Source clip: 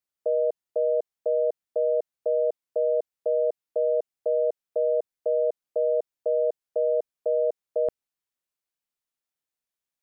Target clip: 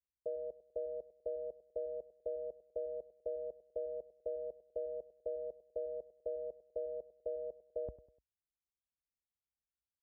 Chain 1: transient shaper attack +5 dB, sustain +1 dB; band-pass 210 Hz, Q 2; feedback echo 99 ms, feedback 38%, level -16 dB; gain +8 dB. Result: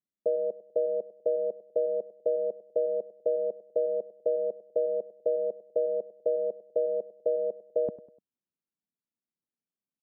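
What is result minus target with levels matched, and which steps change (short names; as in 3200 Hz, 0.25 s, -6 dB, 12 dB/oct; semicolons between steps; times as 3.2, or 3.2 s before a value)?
125 Hz band -9.0 dB
change: band-pass 55 Hz, Q 2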